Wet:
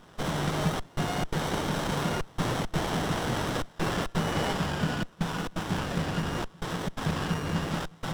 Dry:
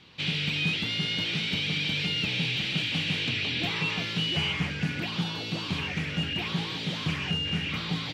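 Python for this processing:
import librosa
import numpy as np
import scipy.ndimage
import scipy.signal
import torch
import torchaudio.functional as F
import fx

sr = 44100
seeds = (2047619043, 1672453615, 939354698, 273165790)

p1 = fx.high_shelf(x, sr, hz=4200.0, db=6.5)
p2 = p1 + fx.echo_wet_lowpass(p1, sr, ms=188, feedback_pct=82, hz=3700.0, wet_db=-11.0, dry=0)
p3 = fx.step_gate(p2, sr, bpm=170, pattern='xxxxxxxxx..xxx.x', floor_db=-24.0, edge_ms=4.5)
p4 = fx.peak_eq(p3, sr, hz=1600.0, db=8.5, octaves=0.87)
y = fx.running_max(p4, sr, window=17)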